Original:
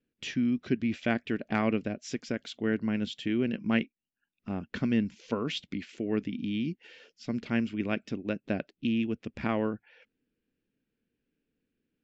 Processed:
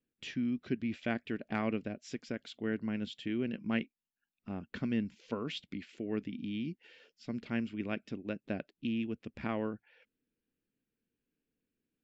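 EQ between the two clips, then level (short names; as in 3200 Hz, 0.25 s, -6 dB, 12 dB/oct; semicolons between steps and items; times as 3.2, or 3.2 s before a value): bell 6100 Hz -4 dB 0.37 oct; -6.0 dB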